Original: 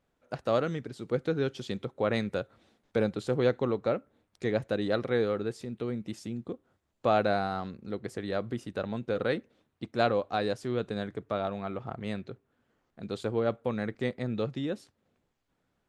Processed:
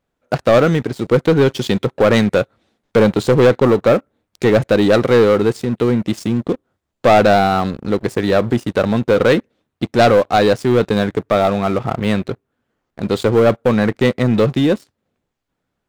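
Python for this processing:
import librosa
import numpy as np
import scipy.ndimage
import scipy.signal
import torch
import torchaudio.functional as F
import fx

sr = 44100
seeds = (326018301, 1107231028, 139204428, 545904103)

y = fx.leveller(x, sr, passes=3)
y = y * 10.0 ** (7.5 / 20.0)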